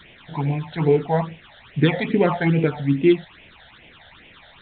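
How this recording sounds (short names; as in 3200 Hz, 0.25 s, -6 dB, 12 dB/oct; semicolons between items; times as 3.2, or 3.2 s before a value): tremolo triangle 6.2 Hz, depth 35%; a quantiser's noise floor 8-bit, dither triangular; phasing stages 8, 2.4 Hz, lowest notch 320–1300 Hz; A-law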